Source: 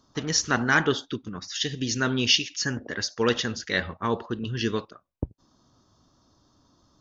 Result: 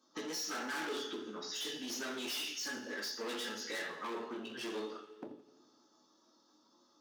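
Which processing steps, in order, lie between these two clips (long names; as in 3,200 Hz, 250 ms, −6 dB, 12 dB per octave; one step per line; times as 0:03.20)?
spectral magnitudes quantised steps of 15 dB
coupled-rooms reverb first 0.39 s, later 1.5 s, from −24 dB, DRR −6.5 dB
gain into a clipping stage and back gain 23 dB
downward compressor 4 to 1, threshold −40 dBFS, peak gain reduction 12.5 dB
noise gate −46 dBFS, range −9 dB
high-pass filter 240 Hz 24 dB per octave
tuned comb filter 430 Hz, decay 0.73 s, mix 70%
feedback echo with a swinging delay time 85 ms, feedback 70%, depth 64 cents, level −19 dB
level +8 dB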